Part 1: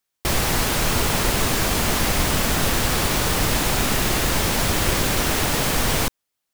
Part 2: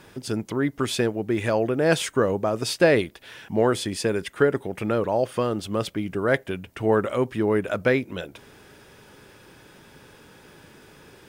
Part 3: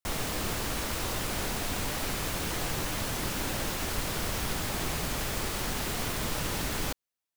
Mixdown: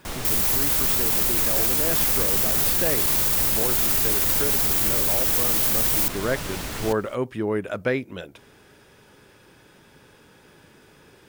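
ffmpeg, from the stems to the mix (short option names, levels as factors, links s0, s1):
-filter_complex "[0:a]aemphasis=mode=production:type=50fm,volume=0.631[s0];[1:a]volume=0.708[s1];[2:a]volume=1.06,asplit=2[s2][s3];[s3]volume=0.0944,aecho=0:1:222:1[s4];[s0][s1][s2][s4]amix=inputs=4:normalize=0,alimiter=limit=0.266:level=0:latency=1:release=27"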